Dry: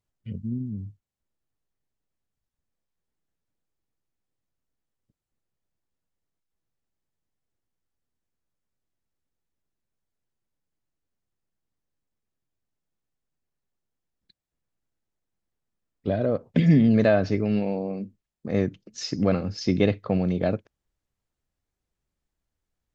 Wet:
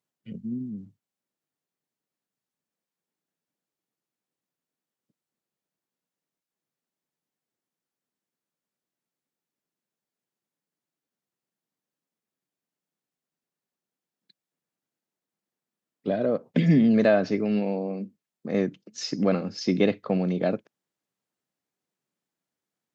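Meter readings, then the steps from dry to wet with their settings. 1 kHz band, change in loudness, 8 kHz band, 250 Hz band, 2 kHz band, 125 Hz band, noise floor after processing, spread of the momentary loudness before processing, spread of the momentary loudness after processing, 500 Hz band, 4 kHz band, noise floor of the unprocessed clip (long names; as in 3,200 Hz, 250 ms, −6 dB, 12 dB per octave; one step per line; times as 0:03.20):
0.0 dB, −1.0 dB, can't be measured, −0.5 dB, 0.0 dB, −4.0 dB, below −85 dBFS, 17 LU, 17 LU, 0.0 dB, 0.0 dB, −85 dBFS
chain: high-pass filter 160 Hz 24 dB per octave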